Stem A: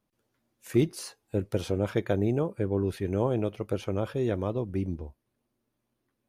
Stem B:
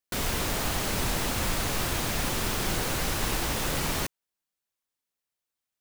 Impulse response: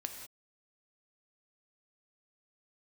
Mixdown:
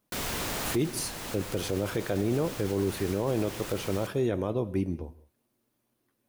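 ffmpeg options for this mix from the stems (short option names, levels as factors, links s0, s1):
-filter_complex "[0:a]highshelf=f=9100:g=9,volume=1.06,asplit=3[s0][s1][s2];[s1]volume=0.398[s3];[1:a]volume=0.631,asplit=2[s4][s5];[s5]volume=0.211[s6];[s2]apad=whole_len=256185[s7];[s4][s7]sidechaincompress=threshold=0.0224:ratio=8:attack=25:release=750[s8];[2:a]atrim=start_sample=2205[s9];[s3][s6]amix=inputs=2:normalize=0[s10];[s10][s9]afir=irnorm=-1:irlink=0[s11];[s0][s8][s11]amix=inputs=3:normalize=0,lowshelf=f=75:g=-8.5,alimiter=limit=0.126:level=0:latency=1:release=18"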